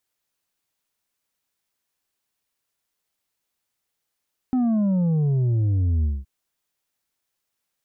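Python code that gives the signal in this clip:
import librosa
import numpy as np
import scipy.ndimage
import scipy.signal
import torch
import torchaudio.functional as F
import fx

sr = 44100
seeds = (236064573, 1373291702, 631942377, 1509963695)

y = fx.sub_drop(sr, level_db=-18.5, start_hz=260.0, length_s=1.72, drive_db=5, fade_s=0.21, end_hz=65.0)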